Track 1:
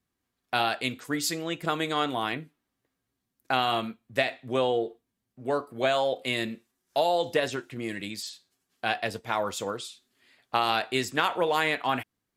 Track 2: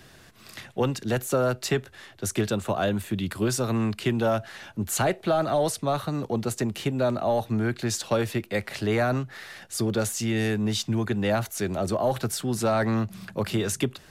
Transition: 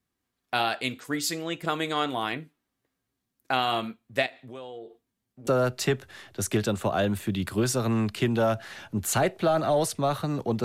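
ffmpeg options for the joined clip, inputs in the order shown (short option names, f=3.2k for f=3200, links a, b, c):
-filter_complex "[0:a]asettb=1/sr,asplit=3[a][b][c];[a]atrim=end=4.264[d];[b]atrim=start=4.26:end=5.47,asetpts=PTS-STARTPTS,afade=t=in:d=0.004:c=qsin,afade=t=out:st=1.206:d=0.004:c=qsin,acompressor=threshold=-42dB:ratio=3:attack=3.2:release=140:knee=1:detection=peak[e];[c]atrim=start=5.466[f];[d][e]acrossfade=d=0.004:c1=hsin:c2=qsin[g];[g][f]acrossfade=d=0.004:c1=qsin:c2=hsin,apad=whole_dur=10.64,atrim=end=10.64,atrim=end=5.472[h];[1:a]atrim=start=1.308:end=6.48[i];[h][i]acrossfade=d=0.004:c1=hsin:c2=hsin"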